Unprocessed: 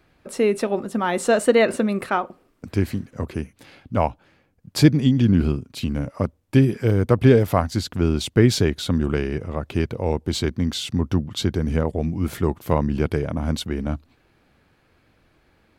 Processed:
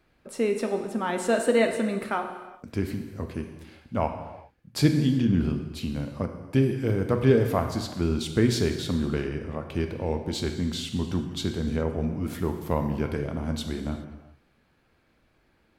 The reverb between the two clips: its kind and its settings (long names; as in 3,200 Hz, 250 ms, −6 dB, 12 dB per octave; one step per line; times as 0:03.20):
reverb whose tail is shaped and stops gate 440 ms falling, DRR 5 dB
level −6.5 dB